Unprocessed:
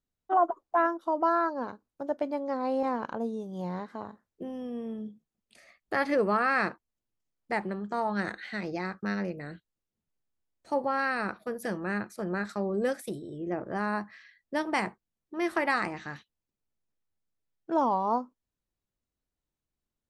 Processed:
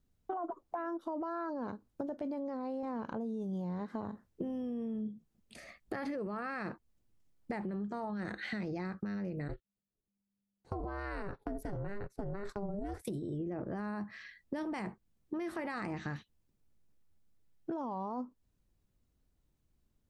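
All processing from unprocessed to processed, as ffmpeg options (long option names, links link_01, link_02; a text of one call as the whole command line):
ffmpeg -i in.wav -filter_complex "[0:a]asettb=1/sr,asplit=3[link_01][link_02][link_03];[link_01]atrim=end=9.484[link_04];[link_02]atrim=start=9.48:end=13.05,asetpts=PTS-STARTPTS,afade=type=in:duration=0.004:curve=qsin,afade=type=out:start_time=3.566:duration=0.004:curve=qsin,agate=range=-16dB:threshold=-44dB:ratio=16:release=100:detection=peak,equalizer=frequency=390:width_type=o:width=2.4:gain=5.5,aeval=exprs='val(0)*sin(2*PI*200*n/s)':channel_layout=same[link_05];[link_03]atrim=start=13.046[link_06];[link_04][link_05]acrossfade=duration=0.004:curve1=hsin:curve2=qsin[link_07];[link_07][link_06]acrossfade=duration=0.004:curve1=qsin:curve2=hsin,lowshelf=frequency=350:gain=11.5,alimiter=level_in=1dB:limit=-24dB:level=0:latency=1:release=18,volume=-1dB,acompressor=threshold=-40dB:ratio=6,volume=4dB" out.wav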